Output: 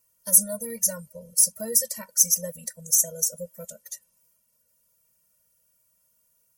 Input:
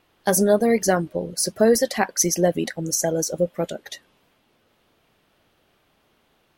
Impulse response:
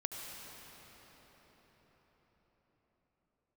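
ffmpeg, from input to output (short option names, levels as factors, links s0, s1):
-af "aexciter=amount=12.7:drive=8.3:freq=5700,afftfilt=real='re*eq(mod(floor(b*sr/1024/220),2),0)':imag='im*eq(mod(floor(b*sr/1024/220),2),0)':win_size=1024:overlap=0.75,volume=0.188"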